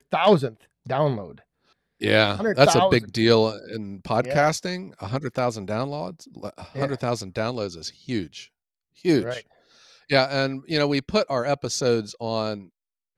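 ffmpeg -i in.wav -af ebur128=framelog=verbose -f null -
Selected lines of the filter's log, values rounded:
Integrated loudness:
  I:         -23.3 LUFS
  Threshold: -34.3 LUFS
Loudness range:
  LRA:         7.9 LU
  Threshold: -44.4 LUFS
  LRA low:   -29.0 LUFS
  LRA high:  -21.1 LUFS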